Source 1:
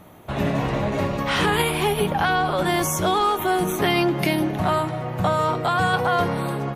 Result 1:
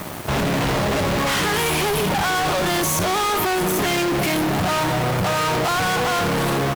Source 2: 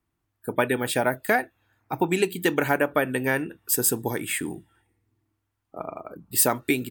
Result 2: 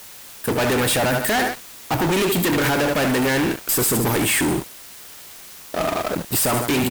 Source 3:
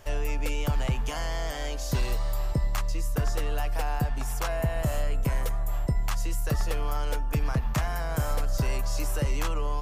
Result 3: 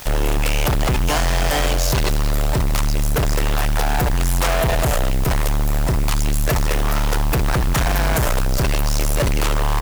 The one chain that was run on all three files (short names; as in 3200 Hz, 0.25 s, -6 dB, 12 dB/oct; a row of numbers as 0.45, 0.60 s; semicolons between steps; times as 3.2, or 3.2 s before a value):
feedback echo 75 ms, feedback 32%, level -15 dB; limiter -16 dBFS; short-mantissa float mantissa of 2-bit; fuzz box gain 41 dB, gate -48 dBFS; requantised 6-bit, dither triangular; match loudness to -20 LUFS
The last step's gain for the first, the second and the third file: -6.5, -4.5, -2.5 dB